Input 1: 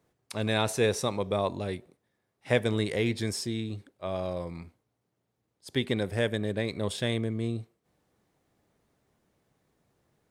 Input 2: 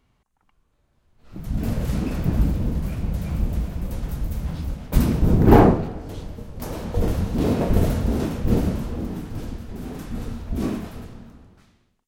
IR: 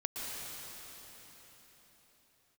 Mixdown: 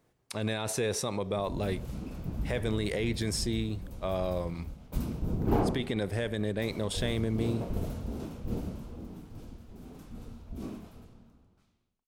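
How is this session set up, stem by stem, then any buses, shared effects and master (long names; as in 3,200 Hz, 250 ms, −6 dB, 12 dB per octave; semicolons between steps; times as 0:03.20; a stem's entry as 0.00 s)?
+1.5 dB, 0.00 s, no send, brickwall limiter −22 dBFS, peak gain reduction 11.5 dB
−14.5 dB, 0.00 s, no send, parametric band 1,800 Hz −6.5 dB 0.38 octaves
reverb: not used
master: no processing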